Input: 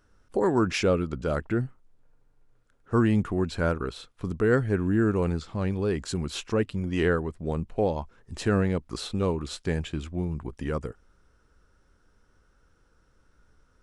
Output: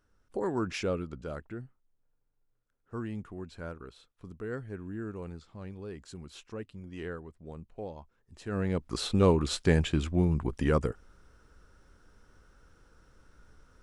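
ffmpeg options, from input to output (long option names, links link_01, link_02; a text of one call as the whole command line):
ffmpeg -i in.wav -af "volume=11dB,afade=type=out:start_time=0.96:duration=0.63:silence=0.446684,afade=type=in:start_time=8.46:duration=0.28:silence=0.251189,afade=type=in:start_time=8.74:duration=0.55:silence=0.446684" out.wav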